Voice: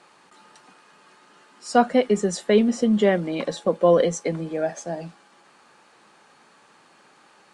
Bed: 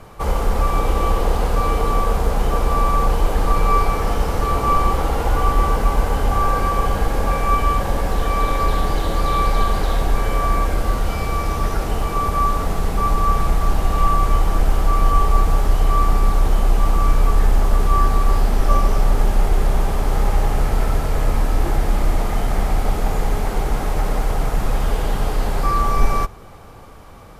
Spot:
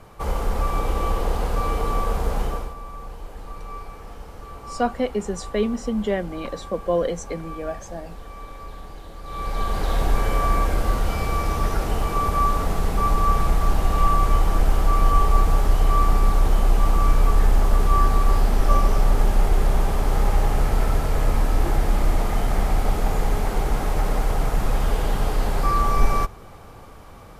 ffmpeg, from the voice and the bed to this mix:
ffmpeg -i stem1.wav -i stem2.wav -filter_complex "[0:a]adelay=3050,volume=-5dB[link_01];[1:a]volume=12.5dB,afade=type=out:start_time=2.4:duration=0.34:silence=0.188365,afade=type=in:start_time=9.23:duration=0.81:silence=0.133352[link_02];[link_01][link_02]amix=inputs=2:normalize=0" out.wav

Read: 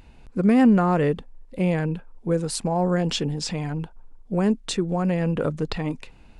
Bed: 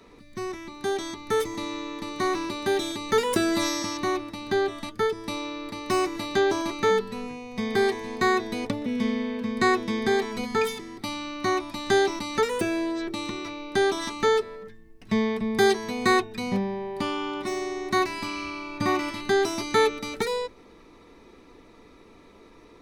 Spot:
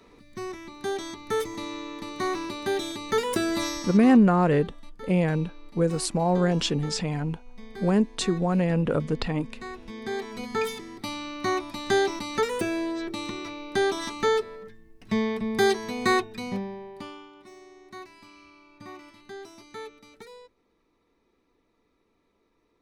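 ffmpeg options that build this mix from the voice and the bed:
ffmpeg -i stem1.wav -i stem2.wav -filter_complex "[0:a]adelay=3500,volume=-0.5dB[link_01];[1:a]volume=13.5dB,afade=type=out:start_time=3.58:duration=0.69:silence=0.177828,afade=type=in:start_time=9.77:duration=1.02:silence=0.158489,afade=type=out:start_time=16.13:duration=1.17:silence=0.133352[link_02];[link_01][link_02]amix=inputs=2:normalize=0" out.wav

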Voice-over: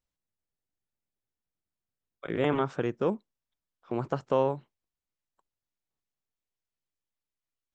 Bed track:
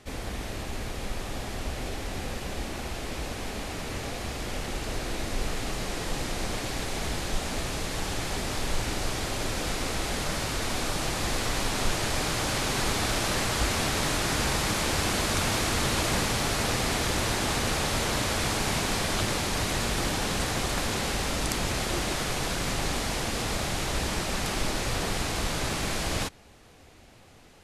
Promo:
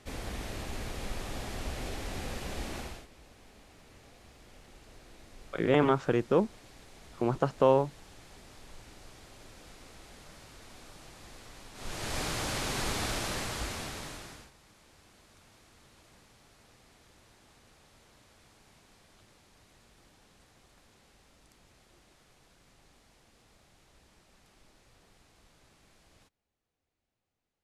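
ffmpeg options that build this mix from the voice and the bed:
ffmpeg -i stem1.wav -i stem2.wav -filter_complex "[0:a]adelay=3300,volume=2.5dB[link_01];[1:a]volume=12.5dB,afade=type=out:start_time=2.77:duration=0.3:silence=0.125893,afade=type=in:start_time=11.74:duration=0.45:silence=0.149624,afade=type=out:start_time=13.03:duration=1.48:silence=0.0398107[link_02];[link_01][link_02]amix=inputs=2:normalize=0" out.wav

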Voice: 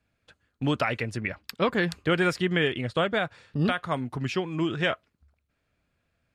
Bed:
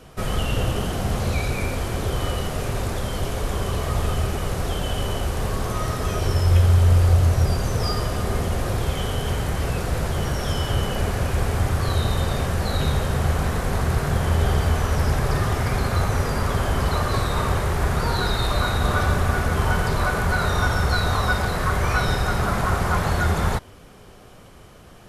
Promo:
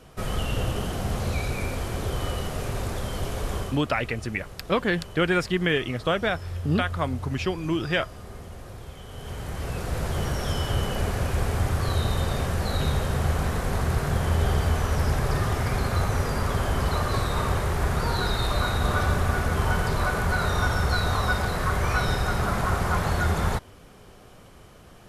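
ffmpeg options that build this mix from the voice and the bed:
ffmpeg -i stem1.wav -i stem2.wav -filter_complex "[0:a]adelay=3100,volume=1dB[link_01];[1:a]volume=10dB,afade=type=out:start_time=3.57:duration=0.24:silence=0.223872,afade=type=in:start_time=9.06:duration=1.11:silence=0.199526[link_02];[link_01][link_02]amix=inputs=2:normalize=0" out.wav

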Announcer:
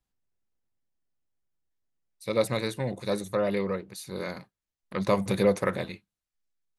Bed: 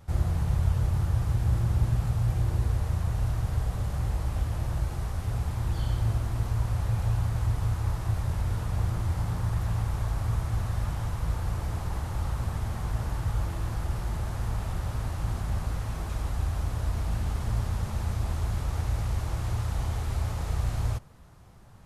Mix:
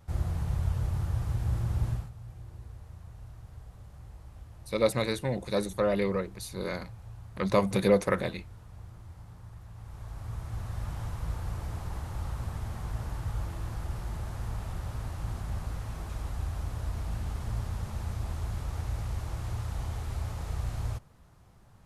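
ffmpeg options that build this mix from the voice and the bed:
ffmpeg -i stem1.wav -i stem2.wav -filter_complex "[0:a]adelay=2450,volume=0dB[link_01];[1:a]volume=9.5dB,afade=type=out:start_time=1.9:duration=0.2:silence=0.188365,afade=type=in:start_time=9.74:duration=1.27:silence=0.199526[link_02];[link_01][link_02]amix=inputs=2:normalize=0" out.wav

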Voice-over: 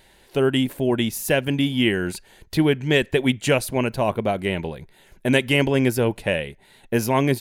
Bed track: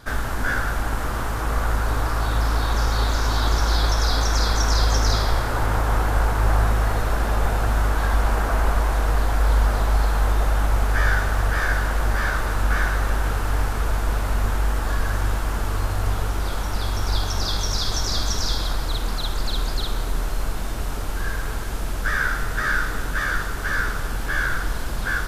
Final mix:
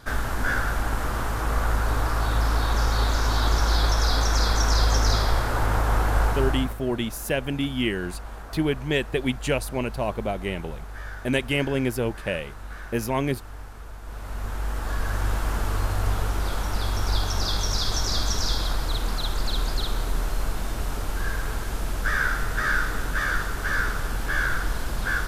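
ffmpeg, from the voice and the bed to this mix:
ffmpeg -i stem1.wav -i stem2.wav -filter_complex "[0:a]adelay=6000,volume=-5.5dB[link_01];[1:a]volume=14.5dB,afade=type=out:start_time=6.26:duration=0.51:silence=0.158489,afade=type=in:start_time=14.01:duration=1.46:silence=0.158489[link_02];[link_01][link_02]amix=inputs=2:normalize=0" out.wav

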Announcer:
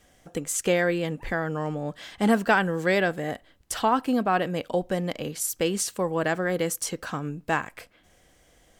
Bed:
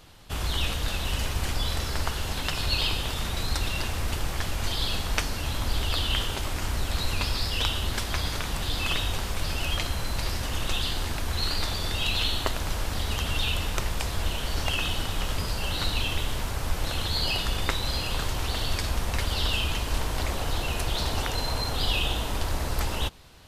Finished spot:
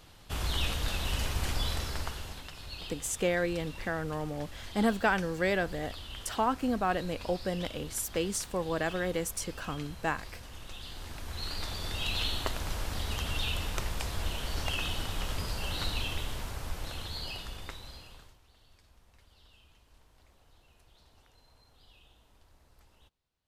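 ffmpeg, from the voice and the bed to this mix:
ffmpeg -i stem1.wav -i stem2.wav -filter_complex "[0:a]adelay=2550,volume=-6dB[link_01];[1:a]volume=8dB,afade=type=out:start_time=1.63:duration=0.86:silence=0.211349,afade=type=in:start_time=10.77:duration=1.42:silence=0.266073,afade=type=out:start_time=15.83:duration=2.56:silence=0.0354813[link_02];[link_01][link_02]amix=inputs=2:normalize=0" out.wav

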